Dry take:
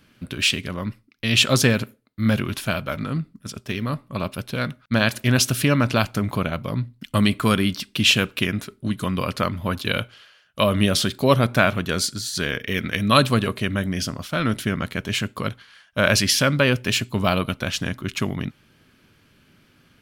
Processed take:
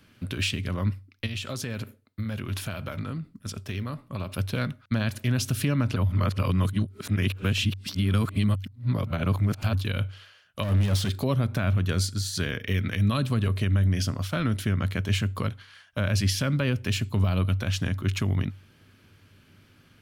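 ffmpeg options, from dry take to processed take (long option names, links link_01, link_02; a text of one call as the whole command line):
ffmpeg -i in.wav -filter_complex "[0:a]asettb=1/sr,asplit=3[link_01][link_02][link_03];[link_01]atrim=end=1.264[link_04];[link_02]atrim=start=1.26:end=4.32,asetpts=PTS-STARTPTS,afade=type=in:duration=0.004:curve=qsin,afade=type=out:start_time=3.056:duration=0.004:curve=qsin,acompressor=threshold=-28dB:ratio=8:attack=3.2:release=140:knee=1:detection=peak[link_05];[link_03]atrim=start=4.316[link_06];[link_04][link_05]acrossfade=duration=0.004:curve1=hsin:curve2=qsin[link_07];[link_07][link_06]acrossfade=duration=0.004:curve1=qsin:curve2=hsin,asplit=3[link_08][link_09][link_10];[link_08]afade=type=out:start_time=10.62:duration=0.02[link_11];[link_09]asoftclip=type=hard:threshold=-21dB,afade=type=in:start_time=10.62:duration=0.02,afade=type=out:start_time=11.22:duration=0.02[link_12];[link_10]afade=type=in:start_time=11.22:duration=0.02[link_13];[link_11][link_12][link_13]amix=inputs=3:normalize=0,asplit=3[link_14][link_15][link_16];[link_14]atrim=end=5.962[link_17];[link_15]atrim=start=5.958:end=9.732,asetpts=PTS-STARTPTS,areverse[link_18];[link_16]atrim=start=9.728[link_19];[link_17][link_18]acrossfade=duration=0.004:curve1=hsin:curve2=hsin[link_20];[link_20][link_19]acrossfade=duration=0.004:curve1=hsin:curve2=hsin,equalizer=frequency=96:width=7.3:gain=14.5,acrossover=split=270[link_21][link_22];[link_22]acompressor=threshold=-30dB:ratio=2[link_23];[link_21][link_23]amix=inputs=2:normalize=0,alimiter=limit=-13.5dB:level=0:latency=1:release=127,volume=-1.5dB" out.wav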